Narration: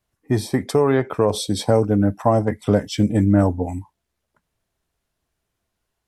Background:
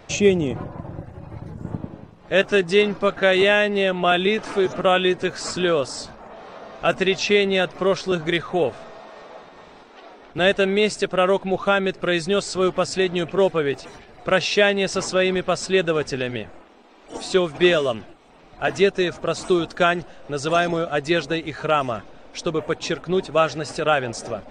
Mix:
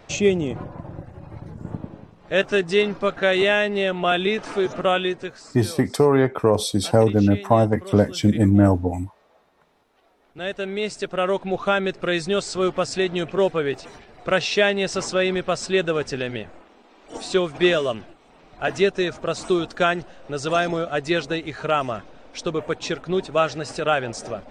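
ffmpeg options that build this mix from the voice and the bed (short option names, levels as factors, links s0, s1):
-filter_complex "[0:a]adelay=5250,volume=1.06[s0];[1:a]volume=5.31,afade=t=out:st=4.89:d=0.6:silence=0.158489,afade=t=in:st=10.15:d=1.5:silence=0.149624[s1];[s0][s1]amix=inputs=2:normalize=0"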